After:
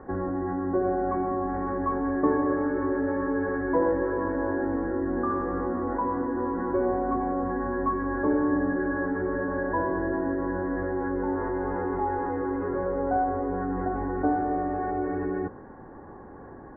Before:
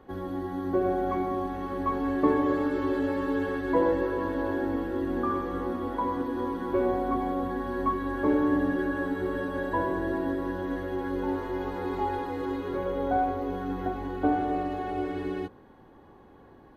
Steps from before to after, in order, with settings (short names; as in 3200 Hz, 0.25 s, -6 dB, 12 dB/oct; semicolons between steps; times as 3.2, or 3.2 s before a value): elliptic low-pass 1800 Hz, stop band 50 dB; in parallel at -2.5 dB: negative-ratio compressor -38 dBFS, ratio -1